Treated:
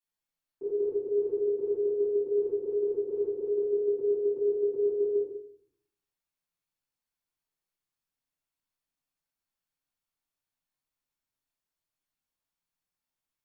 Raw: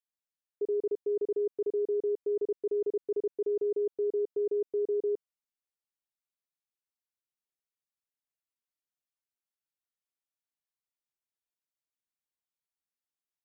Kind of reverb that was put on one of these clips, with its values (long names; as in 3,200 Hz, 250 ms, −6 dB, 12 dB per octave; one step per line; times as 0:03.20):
rectangular room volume 830 cubic metres, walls furnished, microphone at 9.3 metres
level −6 dB